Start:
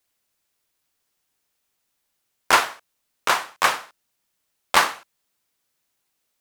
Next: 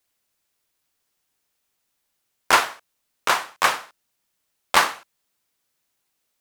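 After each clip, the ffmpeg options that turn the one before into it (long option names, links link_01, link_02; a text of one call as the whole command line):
ffmpeg -i in.wav -af anull out.wav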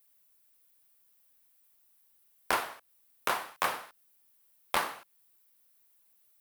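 ffmpeg -i in.wav -filter_complex "[0:a]aexciter=amount=3.1:drive=6.6:freq=9200,acrossover=split=880|5500[link_01][link_02][link_03];[link_01]acompressor=threshold=-29dB:ratio=4[link_04];[link_02]acompressor=threshold=-29dB:ratio=4[link_05];[link_03]acompressor=threshold=-40dB:ratio=4[link_06];[link_04][link_05][link_06]amix=inputs=3:normalize=0,volume=-3dB" out.wav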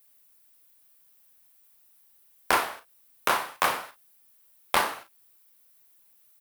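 ffmpeg -i in.wav -af "aecho=1:1:36|51:0.335|0.158,volume=5.5dB" out.wav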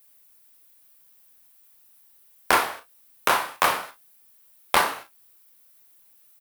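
ffmpeg -i in.wav -filter_complex "[0:a]asplit=2[link_01][link_02];[link_02]adelay=25,volume=-12dB[link_03];[link_01][link_03]amix=inputs=2:normalize=0,volume=3.5dB" out.wav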